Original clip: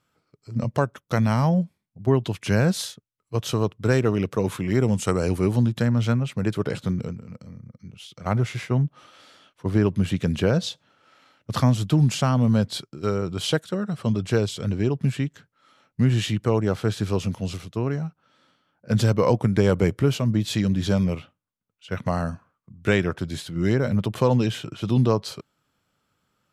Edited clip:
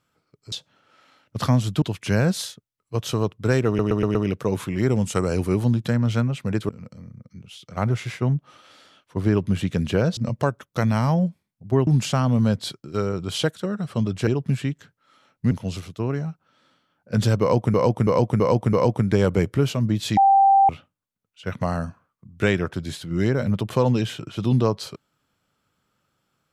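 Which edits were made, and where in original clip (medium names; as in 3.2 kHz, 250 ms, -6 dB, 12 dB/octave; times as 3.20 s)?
0.52–2.22 s: swap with 10.66–11.96 s
4.07 s: stutter 0.12 s, 5 plays
6.61–7.18 s: delete
14.36–14.82 s: delete
16.06–17.28 s: delete
19.18–19.51 s: loop, 5 plays
20.62–21.14 s: bleep 785 Hz -11.5 dBFS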